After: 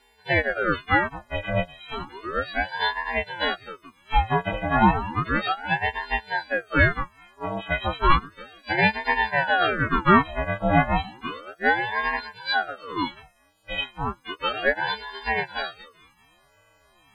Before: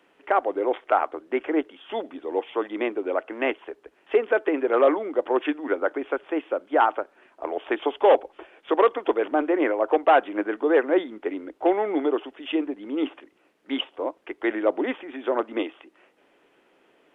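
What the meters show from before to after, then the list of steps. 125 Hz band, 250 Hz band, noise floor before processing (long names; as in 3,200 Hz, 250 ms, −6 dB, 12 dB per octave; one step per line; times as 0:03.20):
can't be measured, −2.0 dB, −63 dBFS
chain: every partial snapped to a pitch grid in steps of 4 semitones
chorus effect 0.15 Hz, delay 19.5 ms, depth 6.5 ms
ring modulator whose carrier an LFO sweeps 800 Hz, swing 70%, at 0.33 Hz
level +4 dB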